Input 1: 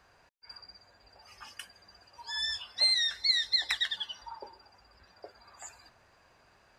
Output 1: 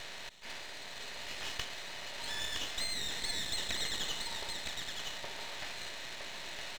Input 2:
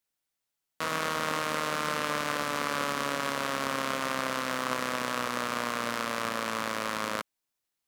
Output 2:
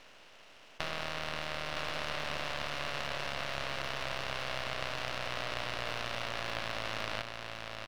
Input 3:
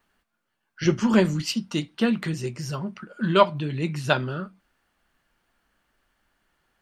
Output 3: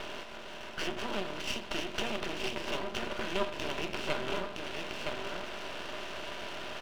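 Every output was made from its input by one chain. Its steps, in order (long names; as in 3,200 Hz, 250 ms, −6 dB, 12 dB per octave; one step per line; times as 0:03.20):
compressor on every frequency bin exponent 0.4
downward compressor 3 to 1, threshold −29 dBFS
loudspeaker in its box 360–4,200 Hz, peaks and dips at 380 Hz +3 dB, 660 Hz +5 dB, 1,200 Hz −5 dB, 2,800 Hz +9 dB
single-tap delay 965 ms −4.5 dB
half-wave rectification
level −2 dB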